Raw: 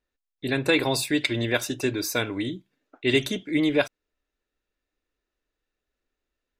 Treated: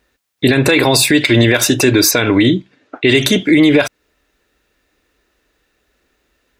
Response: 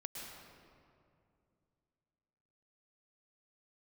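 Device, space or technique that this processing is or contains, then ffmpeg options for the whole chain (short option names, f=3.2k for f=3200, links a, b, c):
mastering chain: -filter_complex "[0:a]asettb=1/sr,asplit=3[a][b][c];[a]atrim=end=2.114[d];[b]atrim=start=2.11:end=3.09,asetpts=PTS-STARTPTS,afade=t=in:d=0.004:c=qsin,afade=t=out:st=0.976:d=0.004:c=qsin,lowpass=5.6k[e];[c]atrim=start=3.086[f];[d][e]acrossfade=d=0.004:c1=hsin:c2=qsin[g];[g][f]acrossfade=d=0.004:c1=qsin:c2=hsin,highpass=42,equalizer=f=1.9k:t=o:w=0.77:g=2,acompressor=threshold=-28dB:ratio=1.5,asoftclip=type=hard:threshold=-13.5dB,alimiter=level_in=22.5dB:limit=-1dB:release=50:level=0:latency=1,volume=-1dB"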